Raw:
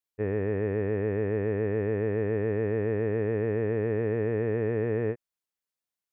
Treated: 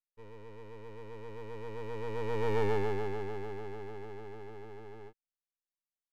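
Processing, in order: Doppler pass-by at 2.63, 22 m/s, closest 5.1 m; half-wave rectifier; gain +5.5 dB

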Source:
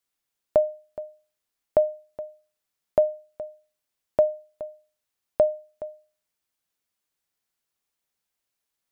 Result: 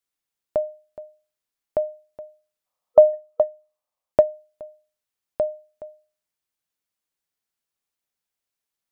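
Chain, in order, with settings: 2.67–4.11 spectral gain 490–1300 Hz +12 dB; 3.13–4.23 transient shaper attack +9 dB, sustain -4 dB; gain -3.5 dB

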